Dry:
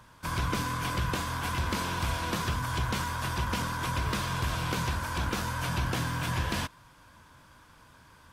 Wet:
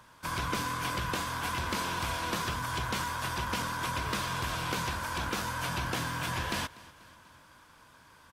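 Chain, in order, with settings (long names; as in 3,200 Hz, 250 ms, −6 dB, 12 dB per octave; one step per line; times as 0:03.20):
low-shelf EQ 190 Hz −8.5 dB
on a send: repeating echo 243 ms, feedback 54%, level −21 dB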